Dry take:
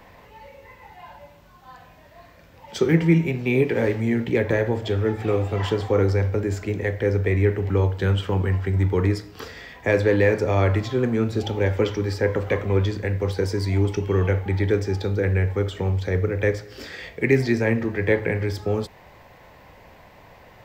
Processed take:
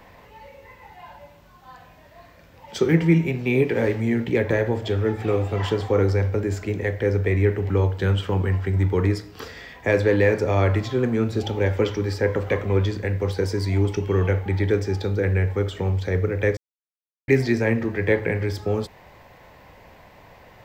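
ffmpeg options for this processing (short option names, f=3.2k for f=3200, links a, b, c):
-filter_complex "[0:a]asplit=3[a][b][c];[a]atrim=end=16.57,asetpts=PTS-STARTPTS,afade=t=out:st=16.566:d=0.004:c=hsin[d];[b]atrim=start=16.57:end=17.28,asetpts=PTS-STARTPTS,volume=0[e];[c]atrim=start=17.28,asetpts=PTS-STARTPTS,afade=t=in:d=0.004:c=hsin[f];[d][e][f]concat=n=3:v=0:a=1"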